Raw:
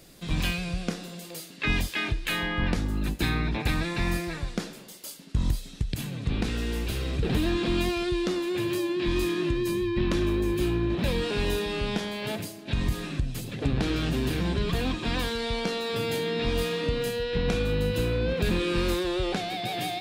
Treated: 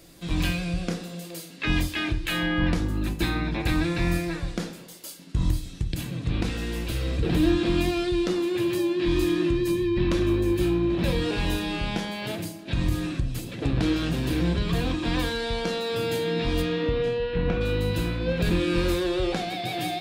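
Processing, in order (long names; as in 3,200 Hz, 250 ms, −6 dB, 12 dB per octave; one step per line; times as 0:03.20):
0:16.61–0:17.60: low-pass filter 4,500 Hz → 2,200 Hz 12 dB per octave
convolution reverb RT60 0.45 s, pre-delay 3 ms, DRR 6.5 dB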